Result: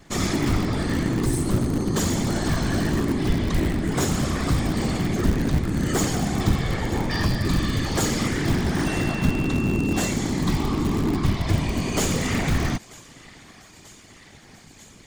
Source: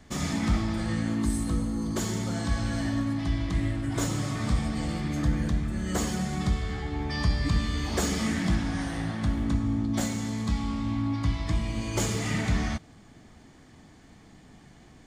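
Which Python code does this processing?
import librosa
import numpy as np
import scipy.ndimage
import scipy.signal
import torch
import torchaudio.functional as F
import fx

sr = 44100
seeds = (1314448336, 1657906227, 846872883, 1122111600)

p1 = np.sign(x) * np.maximum(np.abs(x) - 10.0 ** (-59.0 / 20.0), 0.0)
p2 = p1 + fx.echo_thinned(p1, sr, ms=938, feedback_pct=83, hz=1100.0, wet_db=-19.5, dry=0)
p3 = fx.rider(p2, sr, range_db=10, speed_s=0.5)
p4 = fx.whisperise(p3, sr, seeds[0])
p5 = (np.mod(10.0 ** (22.0 / 20.0) * p4 + 1.0, 2.0) - 1.0) / 10.0 ** (22.0 / 20.0)
p6 = p4 + (p5 * 10.0 ** (-12.0 / 20.0))
p7 = fx.dmg_tone(p6, sr, hz=2700.0, level_db=-38.0, at=(8.85, 10.1), fade=0.02)
y = p7 * 10.0 ** (4.5 / 20.0)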